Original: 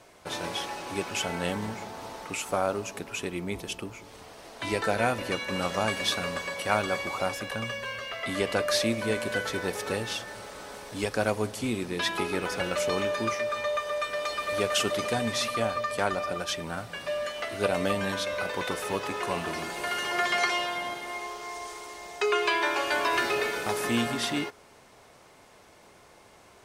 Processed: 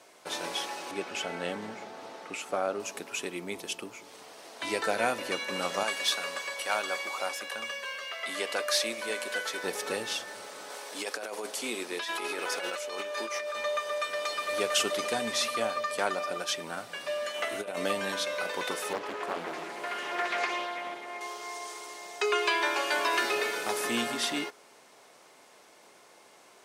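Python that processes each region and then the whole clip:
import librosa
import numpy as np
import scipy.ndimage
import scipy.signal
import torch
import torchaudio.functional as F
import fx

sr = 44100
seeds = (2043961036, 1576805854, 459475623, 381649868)

y = fx.chain(x, sr, fx.lowpass(hz=2700.0, slope=6),
    fx.peak_eq(hz=970.0, db=-6.5, octaves=0.25), at=(0.91, 2.8))
y = fx.chain(y, sr, fx.highpass(hz=600.0, slope=6),
    fx.clip_hard(threshold_db=-18.0), at=(5.83, 9.64))
y = fx.chain(y, sr, fx.highpass(hz=380.0, slope=12),
    fx.over_compress(threshold_db=-33.0, ratio=-1.0), at=(10.7, 13.55))
y = fx.chain(y, sr, fx.peak_eq(hz=4700.0, db=-8.0, octaves=0.45),
    fx.over_compress(threshold_db=-30.0, ratio=-0.5), at=(17.34, 17.77))
y = fx.chain(y, sr, fx.high_shelf(hz=2600.0, db=-11.5),
    fx.hum_notches(base_hz=60, count=6),
    fx.doppler_dist(depth_ms=0.86), at=(18.93, 21.21))
y = scipy.signal.sosfilt(scipy.signal.butter(2, 260.0, 'highpass', fs=sr, output='sos'), y)
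y = fx.peak_eq(y, sr, hz=7700.0, db=3.5, octaves=2.5)
y = F.gain(torch.from_numpy(y), -2.0).numpy()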